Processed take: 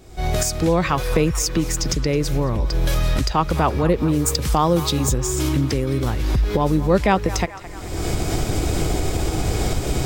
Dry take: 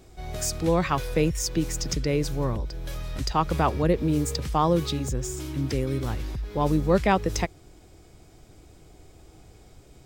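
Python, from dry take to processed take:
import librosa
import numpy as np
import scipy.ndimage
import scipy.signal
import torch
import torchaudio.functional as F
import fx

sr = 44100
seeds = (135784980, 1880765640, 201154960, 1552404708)

y = fx.recorder_agc(x, sr, target_db=-16.0, rise_db_per_s=42.0, max_gain_db=30)
y = fx.high_shelf(y, sr, hz=6500.0, db=8.0, at=(4.26, 5.18))
y = fx.echo_banded(y, sr, ms=216, feedback_pct=72, hz=1400.0, wet_db=-13.0)
y = y * 10.0 ** (4.0 / 20.0)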